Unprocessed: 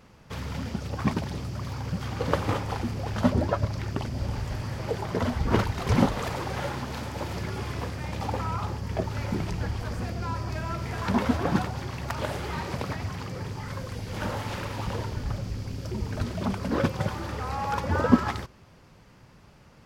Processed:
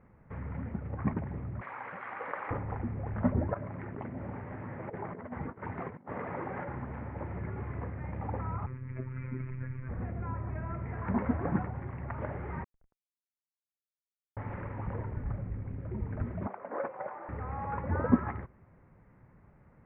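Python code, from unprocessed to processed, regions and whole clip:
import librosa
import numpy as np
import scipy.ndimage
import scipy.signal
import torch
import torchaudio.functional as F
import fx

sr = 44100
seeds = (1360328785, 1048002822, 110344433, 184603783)

y = fx.chain(x, sr, fx.highpass(hz=940.0, slope=12),
    fx.high_shelf(hz=6500.0, db=10.0),
    fx.env_flatten(amount_pct=70), at=(1.61, 2.51))
y = fx.chain(y, sr, fx.highpass(hz=180.0, slope=12),
    fx.doubler(ms=12.0, db=-12.5),
    fx.over_compress(threshold_db=-32.0, ratio=-0.5), at=(3.54, 6.68))
y = fx.chain(y, sr, fx.peak_eq(hz=2400.0, db=8.5, octaves=0.3),
    fx.robotise(hz=129.0),
    fx.fixed_phaser(hz=1800.0, stages=4), at=(8.66, 9.89))
y = fx.chain(y, sr, fx.lowpass(hz=1100.0, slope=12),
    fx.differentiator(),
    fx.schmitt(flips_db=-44.5), at=(12.64, 14.37))
y = fx.chain(y, sr, fx.highpass_res(hz=650.0, q=1.8),
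    fx.high_shelf(hz=3000.0, db=-10.5), at=(16.47, 17.29))
y = scipy.signal.sosfilt(scipy.signal.ellip(4, 1.0, 60, 2100.0, 'lowpass', fs=sr, output='sos'), y)
y = fx.low_shelf(y, sr, hz=380.0, db=5.5)
y = y * 10.0 ** (-8.5 / 20.0)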